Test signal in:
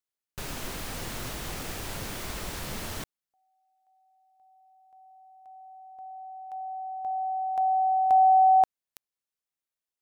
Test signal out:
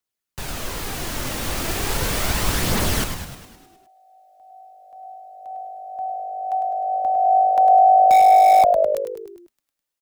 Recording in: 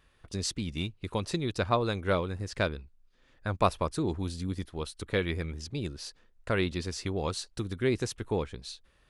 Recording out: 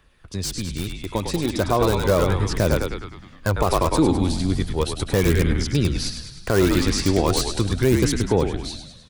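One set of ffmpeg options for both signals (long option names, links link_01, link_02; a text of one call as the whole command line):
ffmpeg -i in.wav -filter_complex "[0:a]asplit=9[link_01][link_02][link_03][link_04][link_05][link_06][link_07][link_08][link_09];[link_02]adelay=103,afreqshift=-51,volume=-7.5dB[link_10];[link_03]adelay=206,afreqshift=-102,volume=-12.1dB[link_11];[link_04]adelay=309,afreqshift=-153,volume=-16.7dB[link_12];[link_05]adelay=412,afreqshift=-204,volume=-21.2dB[link_13];[link_06]adelay=515,afreqshift=-255,volume=-25.8dB[link_14];[link_07]adelay=618,afreqshift=-306,volume=-30.4dB[link_15];[link_08]adelay=721,afreqshift=-357,volume=-35dB[link_16];[link_09]adelay=824,afreqshift=-408,volume=-39.6dB[link_17];[link_01][link_10][link_11][link_12][link_13][link_14][link_15][link_16][link_17]amix=inputs=9:normalize=0,acrossover=split=110|1300|4600[link_18][link_19][link_20][link_21];[link_20]aeval=exprs='(mod(56.2*val(0)+1,2)-1)/56.2':channel_layout=same[link_22];[link_18][link_19][link_22][link_21]amix=inputs=4:normalize=0,aphaser=in_gain=1:out_gain=1:delay=3.8:decay=0.27:speed=0.36:type=triangular,dynaudnorm=framelen=160:gausssize=21:maxgain=8dB,alimiter=level_in=11dB:limit=-1dB:release=50:level=0:latency=1,volume=-6dB" out.wav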